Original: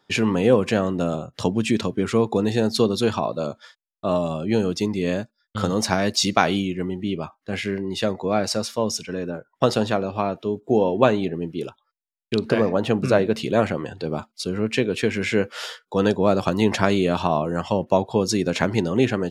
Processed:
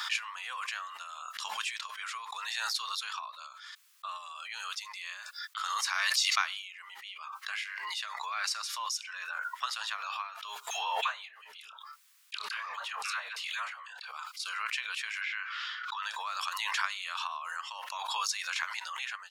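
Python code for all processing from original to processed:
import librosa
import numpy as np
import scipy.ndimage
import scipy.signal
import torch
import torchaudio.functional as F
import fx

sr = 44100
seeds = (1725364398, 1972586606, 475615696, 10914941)

y = fx.chain(x, sr, fx.doubler(ms=28.0, db=-14),
    fx.dispersion(late='lows', ms=95.0, hz=660.0), at=(10.7, 14.12))
y = fx.chain(y, sr, fx.highpass(hz=1000.0, slope=24),
    fx.air_absorb(metres=230.0),
    fx.env_flatten(amount_pct=70), at=(15.21, 16.03))
y = scipy.signal.sosfilt(scipy.signal.ellip(4, 1.0, 70, 1100.0, 'highpass', fs=sr, output='sos'), y)
y = fx.pre_swell(y, sr, db_per_s=23.0)
y = y * librosa.db_to_amplitude(-7.0)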